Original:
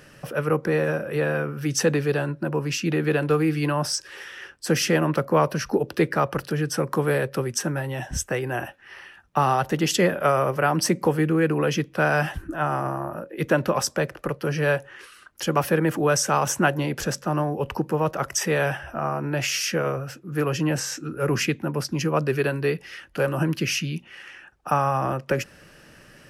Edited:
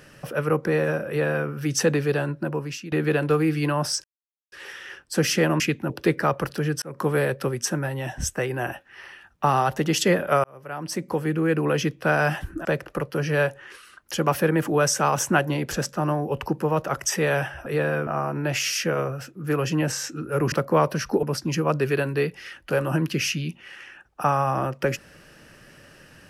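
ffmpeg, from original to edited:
-filter_complex "[0:a]asplit=12[a][b][c][d][e][f][g][h][i][j][k][l];[a]atrim=end=2.92,asetpts=PTS-STARTPTS,afade=t=out:st=2.41:d=0.51:silence=0.158489[m];[b]atrim=start=2.92:end=4.04,asetpts=PTS-STARTPTS,afade=t=in:d=0.004:c=hsin:silence=0.158489,afade=t=out:st=1.116:d=0.004:c=hsin,apad=pad_dur=0.48[n];[c]atrim=start=4.04:end=5.122,asetpts=PTS-STARTPTS,afade=t=in:d=0.004:c=hsin[o];[d]atrim=start=21.398:end=21.702[p];[e]atrim=start=5.828:end=6.75,asetpts=PTS-STARTPTS,afade=t=out:st=0.918:d=0.004:c=hsin[q];[f]atrim=start=6.75:end=10.37,asetpts=PTS-STARTPTS,afade=t=in:d=0.26,afade=t=out:st=3.616:d=0.004:c=hsin[r];[g]atrim=start=10.37:end=12.582,asetpts=PTS-STARTPTS,afade=t=in:d=1.21[s];[h]atrim=start=13.938:end=18.952[t];[i]atrim=start=1.078:end=1.492[u];[j]atrim=start=18.948:end=21.402[v];[k]atrim=start=5.118:end=5.832[w];[l]atrim=start=21.698[x];[m][n][o]concat=n=3:v=0:a=1[y];[y][p]acrossfade=d=0.004:c1=hsin:c2=hsin[z];[q][r][s]concat=n=3:v=0:a=1[aa];[z][aa]acrossfade=d=0.004:c1=hsin:c2=hsin[ab];[ab][t]acrossfade=d=0.004:c1=hsin:c2=hsin[ac];[ac][u]acrossfade=d=0.004:c1=hsin:c2=hsin[ad];[ad][v]acrossfade=d=0.004:c1=hsin:c2=hsin[ae];[ae][w]acrossfade=d=0.004:c1=hsin:c2=hsin[af];[af][x]acrossfade=d=0.004:c1=hsin:c2=hsin"

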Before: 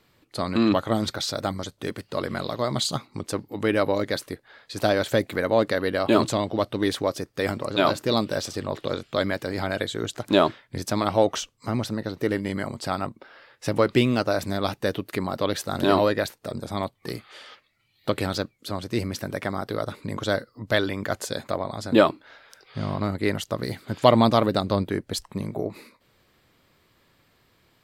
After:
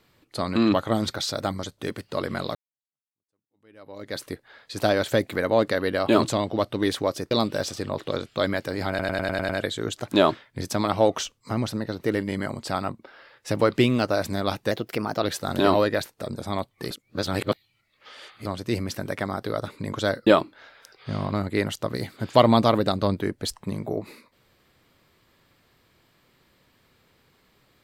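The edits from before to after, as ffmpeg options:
-filter_complex "[0:a]asplit=14[a][b][c][d][e][f][g][h][i][j][k][l][m][n];[a]atrim=end=2.55,asetpts=PTS-STARTPTS,afade=t=out:st=2.546:d=0.004:c=hsin[o];[b]atrim=start=2.55:end=7.312,asetpts=PTS-STARTPTS,afade=t=in:d=1.68:c=exp[p];[c]atrim=start=8.078:end=9.762[q];[d]atrim=start=9.658:end=9.762[r];[e]atrim=start=9.658:end=9.762[s];[f]atrim=start=9.658:end=9.762[t];[g]atrim=start=9.658:end=9.762[u];[h]atrim=start=9.658:end=9.762[v];[i]atrim=start=9.658:end=14.884[w];[j]atrim=start=14.88:end=15.48,asetpts=PTS-STARTPTS,asetrate=50274,aresample=44100[x];[k]atrim=start=15.476:end=17.152[y];[l]atrim=start=17.148:end=18.702,asetpts=PTS-STARTPTS,areverse[z];[m]atrim=start=18.698:end=20.512[aa];[n]atrim=start=21.948[ab];[o][p]concat=n=2:v=0:a=1[ac];[ac][q]acrossfade=d=0.004:c1=hsin:c2=hsin[ad];[ad][r]acrossfade=d=0.004:c1=hsin:c2=hsin[ae];[ae][s]acrossfade=d=0.004:c1=hsin:c2=hsin[af];[af][t]acrossfade=d=0.004:c1=hsin:c2=hsin[ag];[ag][u]acrossfade=d=0.004:c1=hsin:c2=hsin[ah];[ah][v]acrossfade=d=0.004:c1=hsin:c2=hsin[ai];[ai][w]acrossfade=d=0.004:c1=hsin:c2=hsin[aj];[aj][x]acrossfade=d=0.004:c1=hsin:c2=hsin[ak];[ak][y]acrossfade=d=0.004:c1=hsin:c2=hsin[al];[al][z]acrossfade=d=0.004:c1=hsin:c2=hsin[am];[am][aa]acrossfade=d=0.004:c1=hsin:c2=hsin[an];[an][ab]acrossfade=d=0.004:c1=hsin:c2=hsin"

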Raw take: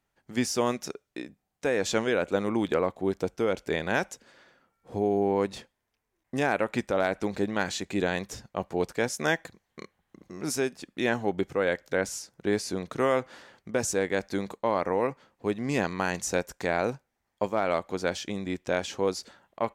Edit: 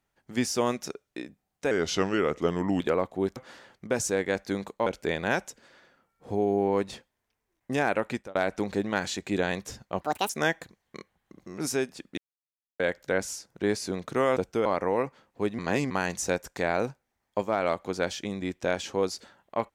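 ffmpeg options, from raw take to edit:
-filter_complex "[0:a]asplit=14[a][b][c][d][e][f][g][h][i][j][k][l][m][n];[a]atrim=end=1.714[o];[b]atrim=start=1.71:end=2.65,asetpts=PTS-STARTPTS,asetrate=37926,aresample=44100,atrim=end_sample=48202,asetpts=PTS-STARTPTS[p];[c]atrim=start=2.646:end=3.212[q];[d]atrim=start=13.198:end=14.702[r];[e]atrim=start=3.498:end=6.99,asetpts=PTS-STARTPTS,afade=t=out:st=3.192:d=0.3[s];[f]atrim=start=6.99:end=8.654,asetpts=PTS-STARTPTS,afade=t=in:d=0.004:c=hsin[t];[g]atrim=start=8.65:end=9.13,asetpts=PTS-STARTPTS,asetrate=74970,aresample=44100[u];[h]atrim=start=9.126:end=11.01,asetpts=PTS-STARTPTS,afade=t=out:st=1.88:d=0.004:c=hsin[v];[i]atrim=start=11.01:end=11.63,asetpts=PTS-STARTPTS,volume=0[w];[j]atrim=start=11.63:end=13.202,asetpts=PTS-STARTPTS,afade=t=in:d=0.004:c=hsin[x];[k]atrim=start=3.208:end=3.502[y];[l]atrim=start=14.698:end=15.632[z];[m]atrim=start=15.628:end=15.952,asetpts=PTS-STARTPTS,areverse[aa];[n]atrim=start=15.948[ab];[o][p]acrossfade=d=0.004:c1=hsin:c2=hsin[ac];[ac][q]acrossfade=d=0.004:c1=hsin:c2=hsin[ad];[ad][r]acrossfade=d=0.004:c1=hsin:c2=hsin[ae];[s][t]concat=n=2:v=0:a=1[af];[ae][af]acrossfade=d=0.004:c1=hsin:c2=hsin[ag];[ag][u]acrossfade=d=0.004:c1=hsin:c2=hsin[ah];[v][w][x]concat=n=3:v=0:a=1[ai];[ah][ai]acrossfade=d=0.004:c1=hsin:c2=hsin[aj];[aj][y]acrossfade=d=0.004:c1=hsin:c2=hsin[ak];[ak][z]acrossfade=d=0.004:c1=hsin:c2=hsin[al];[al][aa]acrossfade=d=0.004:c1=hsin:c2=hsin[am];[am][ab]acrossfade=d=0.004:c1=hsin:c2=hsin"

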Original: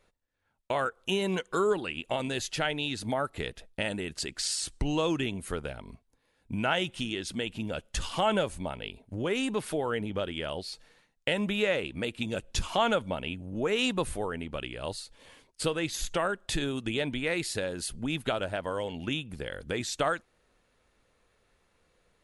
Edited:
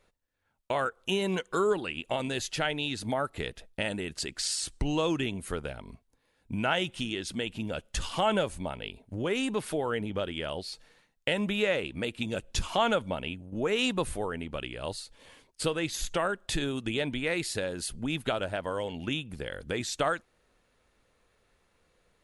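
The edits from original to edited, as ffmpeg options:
-filter_complex "[0:a]asplit=2[a][b];[a]atrim=end=13.52,asetpts=PTS-STARTPTS,afade=t=out:st=13.26:d=0.26:silence=0.421697[c];[b]atrim=start=13.52,asetpts=PTS-STARTPTS,afade=t=in:d=0.004:c=hsin:silence=0.421697[d];[c][d]concat=n=2:v=0:a=1"

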